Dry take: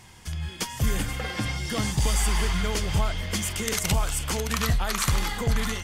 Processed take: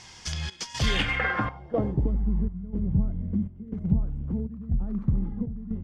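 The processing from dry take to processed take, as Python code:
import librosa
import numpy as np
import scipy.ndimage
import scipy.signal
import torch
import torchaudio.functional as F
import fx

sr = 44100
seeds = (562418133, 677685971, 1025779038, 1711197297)

p1 = fx.low_shelf(x, sr, hz=360.0, db=-6.0)
p2 = fx.quant_dither(p1, sr, seeds[0], bits=6, dither='none')
p3 = p1 + (p2 * 10.0 ** (-11.5 / 20.0))
p4 = fx.step_gate(p3, sr, bpm=121, pattern='xxxx..xx', floor_db=-12.0, edge_ms=4.5)
p5 = fx.filter_sweep_lowpass(p4, sr, from_hz=5600.0, to_hz=210.0, start_s=0.72, end_s=2.23, q=2.5)
y = p5 * 10.0 ** (2.0 / 20.0)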